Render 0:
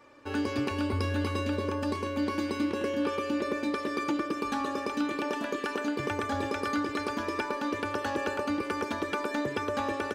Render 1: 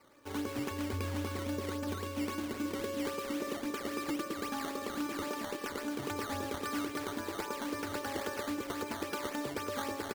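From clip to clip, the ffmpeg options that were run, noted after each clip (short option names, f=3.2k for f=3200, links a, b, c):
-af "aecho=1:1:967|1934|2901|3868|4835:0.266|0.128|0.0613|0.0294|0.0141,acrusher=samples=12:mix=1:aa=0.000001:lfo=1:lforange=12:lforate=3.7,volume=-6.5dB"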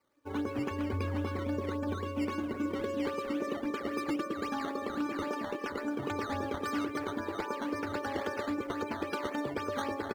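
-af "afftdn=nr=17:nf=-45,volume=3dB"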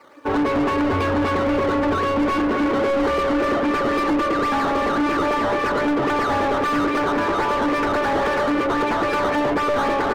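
-filter_complex "[0:a]asplit=2[a][b];[b]highpass=f=720:p=1,volume=31dB,asoftclip=type=tanh:threshold=-20.5dB[c];[a][c]amix=inputs=2:normalize=0,lowpass=f=1.4k:p=1,volume=-6dB,volume=8dB"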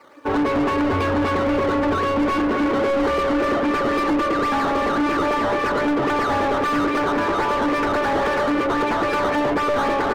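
-af anull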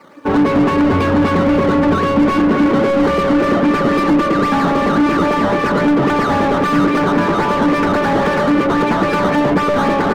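-af "equalizer=f=180:w=1.8:g=14,volume=4dB"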